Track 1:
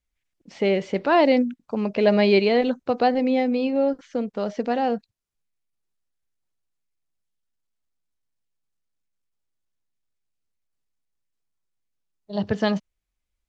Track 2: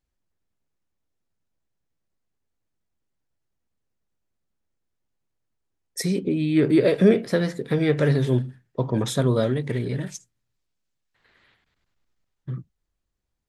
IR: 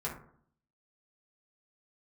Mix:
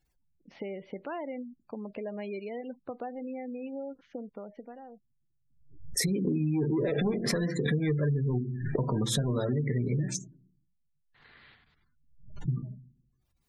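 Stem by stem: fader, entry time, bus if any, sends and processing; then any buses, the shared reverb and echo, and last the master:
-7.0 dB, 0.00 s, no send, LPF 3500 Hz 12 dB/oct; compressor 4:1, threshold -30 dBFS, peak gain reduction 14 dB; requantised 12-bit, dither triangular; auto duck -20 dB, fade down 1.40 s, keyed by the second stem
+2.5 dB, 0.00 s, send -9.5 dB, bell 500 Hz -4.5 dB 0.73 oct; soft clip -17 dBFS, distortion -13 dB; backwards sustainer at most 87 dB/s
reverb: on, RT60 0.60 s, pre-delay 3 ms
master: spectral gate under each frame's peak -25 dB strong; compressor 12:1, threshold -25 dBFS, peak gain reduction 13.5 dB

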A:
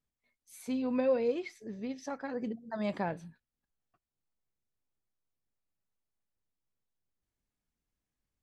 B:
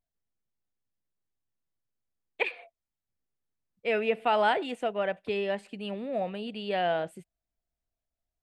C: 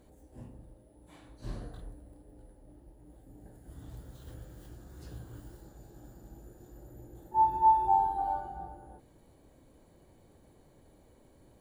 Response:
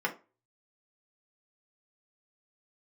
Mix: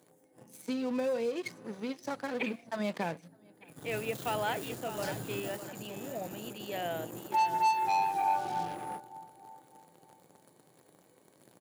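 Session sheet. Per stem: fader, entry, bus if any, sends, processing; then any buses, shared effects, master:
-9.0 dB, 0.00 s, bus A, send -16 dB, echo send -20.5 dB, dry
-9.0 dB, 0.00 s, no bus, no send, echo send -10.5 dB, crossover distortion -59.5 dBFS
-1.0 dB, 0.00 s, bus A, send -14 dB, echo send -11.5 dB, auto duck -23 dB, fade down 0.85 s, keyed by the first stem
bus A: 0.0 dB, sample leveller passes 3; compressor 6:1, threshold -30 dBFS, peak gain reduction 11.5 dB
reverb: on, RT60 0.30 s, pre-delay 3 ms
echo: feedback echo 0.606 s, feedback 28%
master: HPF 130 Hz 24 dB/oct; high shelf 3700 Hz +8 dB

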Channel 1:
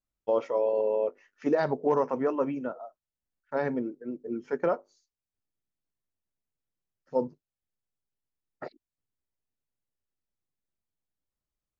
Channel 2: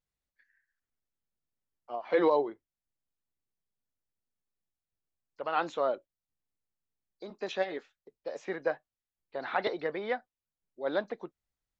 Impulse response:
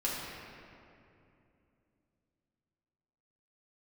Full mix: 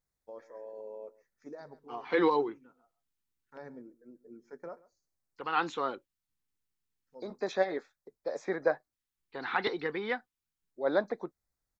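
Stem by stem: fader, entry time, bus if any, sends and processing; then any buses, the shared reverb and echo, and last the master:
-17.5 dB, 0.00 s, no send, echo send -21 dB, high shelf 4100 Hz +11.5 dB; auto duck -7 dB, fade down 0.65 s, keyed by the second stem
+3.0 dB, 0.00 s, no send, no echo send, dry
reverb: off
echo: echo 0.134 s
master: LFO notch square 0.28 Hz 610–2900 Hz

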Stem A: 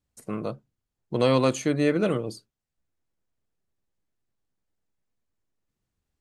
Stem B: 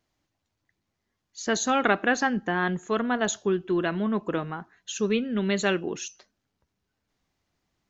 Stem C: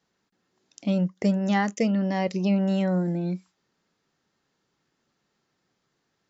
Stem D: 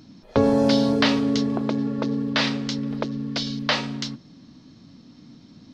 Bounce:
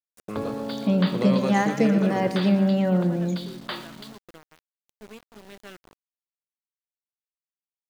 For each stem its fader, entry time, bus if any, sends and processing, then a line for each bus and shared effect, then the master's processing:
-6.0 dB, 0.00 s, no send, echo send -9 dB, three-band squash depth 40%
-19.0 dB, 0.00 s, no send, no echo send, dry
+2.5 dB, 0.00 s, no send, echo send -10 dB, LPF 2500 Hz 6 dB/oct
-8.0 dB, 0.00 s, no send, echo send -15.5 dB, rippled Chebyshev low-pass 4800 Hz, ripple 6 dB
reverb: off
echo: feedback echo 0.118 s, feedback 48%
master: sample gate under -42 dBFS

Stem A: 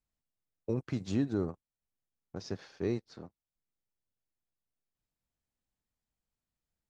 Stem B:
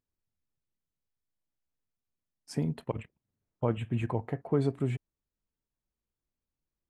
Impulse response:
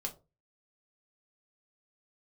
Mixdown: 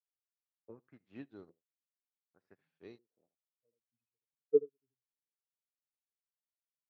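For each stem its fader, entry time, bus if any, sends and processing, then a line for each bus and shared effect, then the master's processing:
+1.0 dB, 0.00 s, no send, echo send -15.5 dB, HPF 320 Hz 6 dB/oct
-6.5 dB, 0.00 s, no send, echo send -7 dB, weighting filter D; spectral expander 4:1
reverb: off
echo: echo 78 ms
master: LFO low-pass saw up 0.67 Hz 410–4100 Hz; upward expander 2.5:1, over -43 dBFS

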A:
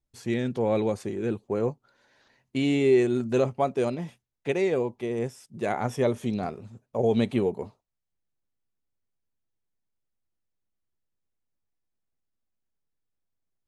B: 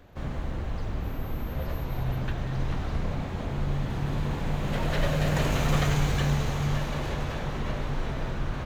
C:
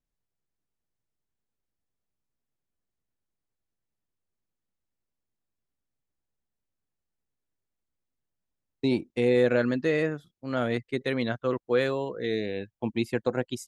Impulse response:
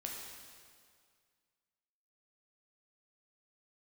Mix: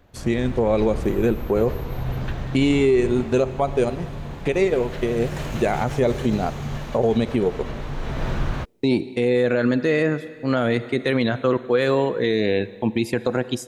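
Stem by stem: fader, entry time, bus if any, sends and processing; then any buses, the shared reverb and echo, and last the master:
+1.5 dB, 0.00 s, send -13.5 dB, transient shaper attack +8 dB, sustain -10 dB
-6.5 dB, 0.00 s, no send, vocal rider within 4 dB 2 s
+3.0 dB, 0.00 s, send -13.5 dB, dry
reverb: on, RT60 2.0 s, pre-delay 5 ms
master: AGC; limiter -10 dBFS, peak gain reduction 9 dB

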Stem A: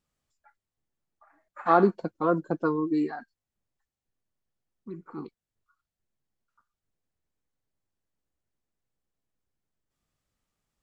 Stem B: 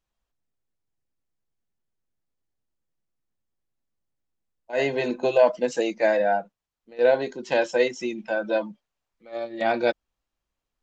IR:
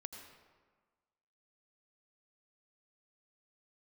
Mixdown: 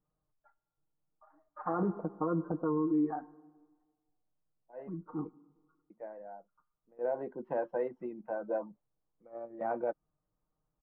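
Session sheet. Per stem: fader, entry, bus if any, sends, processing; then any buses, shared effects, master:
-4.0 dB, 0.00 s, send -12.5 dB, comb 6.5 ms, depth 84%
-12.5 dB, 0.00 s, muted 4.89–5.9, no send, harmonic-percussive split percussive +8 dB; auto duck -14 dB, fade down 1.00 s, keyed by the first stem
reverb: on, RT60 1.5 s, pre-delay 76 ms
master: LPF 1200 Hz 24 dB/oct; limiter -23.5 dBFS, peak gain reduction 11 dB

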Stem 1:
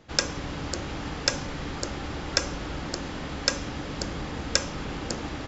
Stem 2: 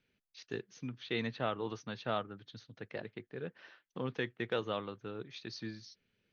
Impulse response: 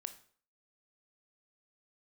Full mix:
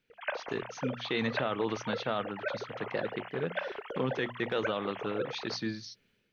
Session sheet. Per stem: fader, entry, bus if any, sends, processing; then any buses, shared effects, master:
-3.5 dB, 0.10 s, send -17.5 dB, sine-wave speech; low shelf 470 Hz +10 dB; auto duck -7 dB, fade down 0.30 s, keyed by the second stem
+0.5 dB, 0.00 s, no send, bell 98 Hz -9 dB 0.23 oct; notches 60/120/180/240 Hz; AGC gain up to 8 dB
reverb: on, RT60 0.50 s, pre-delay 17 ms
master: limiter -21 dBFS, peak gain reduction 8.5 dB

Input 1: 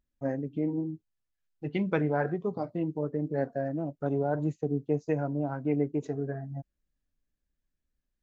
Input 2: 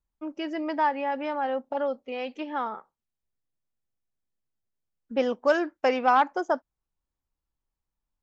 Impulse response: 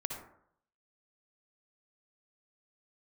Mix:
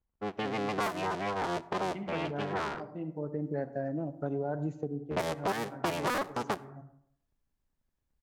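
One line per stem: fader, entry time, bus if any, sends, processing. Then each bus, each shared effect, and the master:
-2.0 dB, 0.20 s, send -13 dB, auto duck -14 dB, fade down 0.30 s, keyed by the second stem
-1.0 dB, 0.00 s, send -18.5 dB, cycle switcher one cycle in 3, inverted; low-pass opened by the level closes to 1700 Hz, open at -19.5 dBFS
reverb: on, RT60 0.65 s, pre-delay 53 ms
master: compressor 5:1, threshold -29 dBFS, peak gain reduction 11.5 dB

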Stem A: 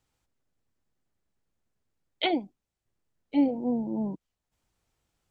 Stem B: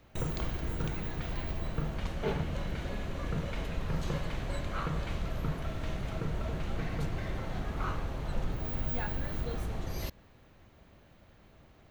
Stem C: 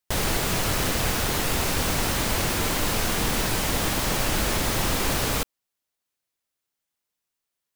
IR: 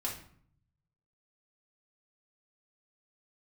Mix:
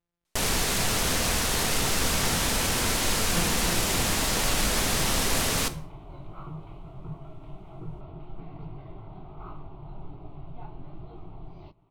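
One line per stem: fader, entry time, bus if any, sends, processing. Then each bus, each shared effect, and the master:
-9.5 dB, 0.00 s, no send, sample sorter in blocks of 256 samples
+0.5 dB, 1.60 s, no send, Gaussian blur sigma 3.1 samples; fixed phaser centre 340 Hz, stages 8; detuned doubles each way 44 cents
-6.0 dB, 0.25 s, send -7.5 dB, high shelf 5800 Hz +8.5 dB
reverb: on, RT60 0.55 s, pre-delay 4 ms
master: decimation joined by straight lines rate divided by 2×

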